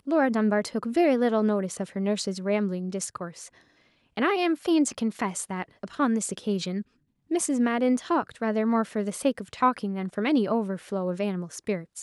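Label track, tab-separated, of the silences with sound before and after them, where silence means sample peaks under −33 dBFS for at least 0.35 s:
3.450000	4.170000	silence
6.820000	7.310000	silence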